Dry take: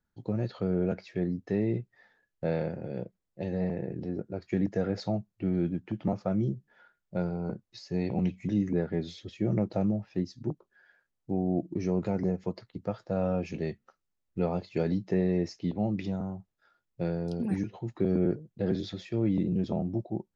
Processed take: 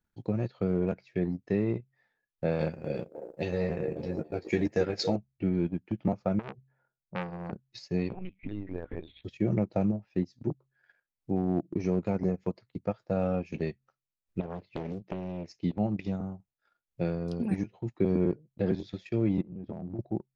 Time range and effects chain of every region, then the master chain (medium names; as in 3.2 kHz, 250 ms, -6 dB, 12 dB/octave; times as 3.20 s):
2.59–5.16 s: treble shelf 2.8 kHz +11.5 dB + doubling 13 ms -4.5 dB + repeats whose band climbs or falls 275 ms, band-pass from 410 Hz, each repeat 0.7 oct, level -5 dB
6.39–7.53 s: level-controlled noise filter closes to 610 Hz, open at -25.5 dBFS + transformer saturation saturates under 1.4 kHz
8.13–9.24 s: bass shelf 370 Hz -7 dB + compression 3:1, threshold -33 dBFS + LPC vocoder at 8 kHz pitch kept
14.40–15.48 s: compression 12:1, threshold -30 dBFS + distance through air 170 m + loudspeaker Doppler distortion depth 0.84 ms
19.41–19.99 s: Bessel low-pass 1.4 kHz + compression 16:1, threshold -33 dBFS
whole clip: peaking EQ 2.4 kHz +5 dB 0.37 oct; de-hum 66.28 Hz, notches 2; transient shaper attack +2 dB, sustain -12 dB